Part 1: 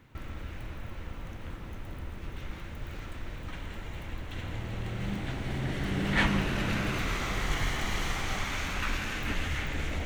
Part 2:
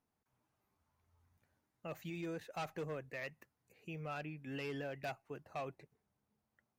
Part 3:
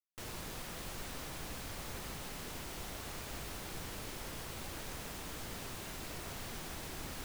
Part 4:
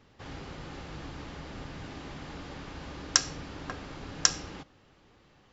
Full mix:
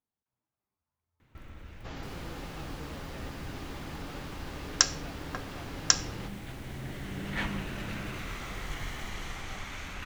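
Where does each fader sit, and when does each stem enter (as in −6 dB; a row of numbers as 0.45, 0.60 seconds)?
−7.5, −10.0, −9.0, +0.5 decibels; 1.20, 0.00, 1.85, 1.65 seconds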